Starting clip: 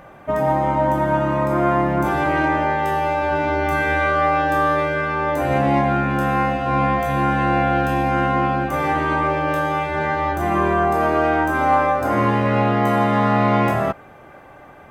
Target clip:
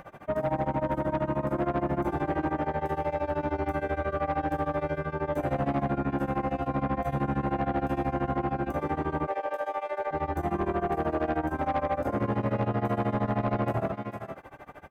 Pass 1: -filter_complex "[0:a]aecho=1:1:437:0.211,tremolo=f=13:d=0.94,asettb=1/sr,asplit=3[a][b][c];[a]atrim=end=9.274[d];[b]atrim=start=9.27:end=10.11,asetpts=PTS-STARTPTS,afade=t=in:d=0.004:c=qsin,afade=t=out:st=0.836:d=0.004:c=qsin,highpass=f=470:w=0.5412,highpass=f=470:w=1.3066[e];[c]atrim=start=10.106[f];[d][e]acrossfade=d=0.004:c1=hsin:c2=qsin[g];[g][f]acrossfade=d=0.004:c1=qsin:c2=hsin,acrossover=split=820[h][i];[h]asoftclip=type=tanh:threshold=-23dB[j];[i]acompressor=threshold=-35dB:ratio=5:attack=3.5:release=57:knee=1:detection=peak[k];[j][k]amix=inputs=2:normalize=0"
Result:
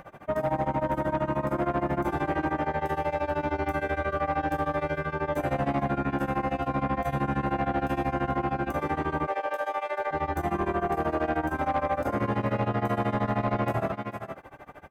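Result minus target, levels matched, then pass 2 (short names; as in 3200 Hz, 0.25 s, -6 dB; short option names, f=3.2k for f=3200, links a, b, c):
compressor: peak gain reduction -6.5 dB
-filter_complex "[0:a]aecho=1:1:437:0.211,tremolo=f=13:d=0.94,asettb=1/sr,asplit=3[a][b][c];[a]atrim=end=9.274[d];[b]atrim=start=9.27:end=10.11,asetpts=PTS-STARTPTS,afade=t=in:d=0.004:c=qsin,afade=t=out:st=0.836:d=0.004:c=qsin,highpass=f=470:w=0.5412,highpass=f=470:w=1.3066[e];[c]atrim=start=10.106[f];[d][e]acrossfade=d=0.004:c1=hsin:c2=qsin[g];[g][f]acrossfade=d=0.004:c1=qsin:c2=hsin,acrossover=split=820[h][i];[h]asoftclip=type=tanh:threshold=-23dB[j];[i]acompressor=threshold=-43dB:ratio=5:attack=3.5:release=57:knee=1:detection=peak[k];[j][k]amix=inputs=2:normalize=0"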